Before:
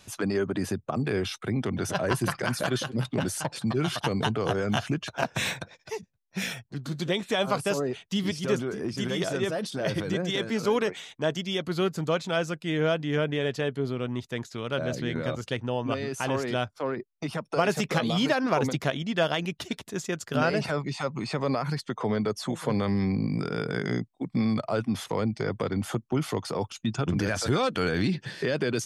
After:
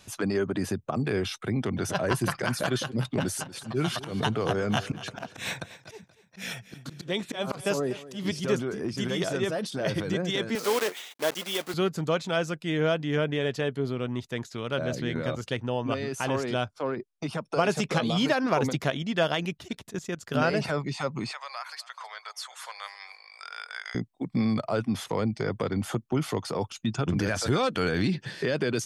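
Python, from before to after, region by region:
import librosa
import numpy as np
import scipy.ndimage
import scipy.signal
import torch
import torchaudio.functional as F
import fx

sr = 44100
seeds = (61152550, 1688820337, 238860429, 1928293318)

y = fx.chain(x, sr, fx.highpass(hz=47.0, slope=12),
    fx.auto_swell(attack_ms=154.0),
    fx.echo_feedback(ms=238, feedback_pct=40, wet_db=-17.0), at=(3.15, 8.4))
y = fx.chain(y, sr, fx.block_float(bits=3),
    fx.highpass(hz=350.0, slope=12), at=(10.55, 11.74))
y = fx.chain(y, sr, fx.lowpass(hz=11000.0, slope=24),
    fx.peak_eq(hz=1900.0, db=-4.5, octaves=0.23), at=(16.41, 18.2))
y = fx.chain(y, sr, fx.low_shelf(hz=140.0, db=6.5),
    fx.level_steps(step_db=15), at=(19.57, 20.29))
y = fx.chain(y, sr, fx.bessel_highpass(hz=1300.0, order=8),
    fx.echo_feedback(ms=254, feedback_pct=31, wet_db=-19.5), at=(21.31, 23.95))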